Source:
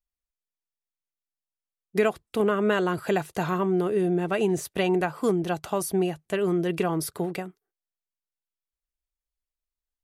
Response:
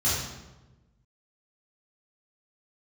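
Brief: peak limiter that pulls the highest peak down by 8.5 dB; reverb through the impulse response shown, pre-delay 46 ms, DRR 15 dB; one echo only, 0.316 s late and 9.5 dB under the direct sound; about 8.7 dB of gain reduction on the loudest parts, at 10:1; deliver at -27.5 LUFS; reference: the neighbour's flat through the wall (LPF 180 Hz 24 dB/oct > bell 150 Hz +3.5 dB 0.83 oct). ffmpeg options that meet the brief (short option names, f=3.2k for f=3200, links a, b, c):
-filter_complex "[0:a]acompressor=threshold=-27dB:ratio=10,alimiter=level_in=0.5dB:limit=-24dB:level=0:latency=1,volume=-0.5dB,aecho=1:1:316:0.335,asplit=2[a][b];[1:a]atrim=start_sample=2205,adelay=46[c];[b][c]afir=irnorm=-1:irlink=0,volume=-27dB[d];[a][d]amix=inputs=2:normalize=0,lowpass=f=180:w=0.5412,lowpass=f=180:w=1.3066,equalizer=f=150:t=o:w=0.83:g=3.5,volume=13dB"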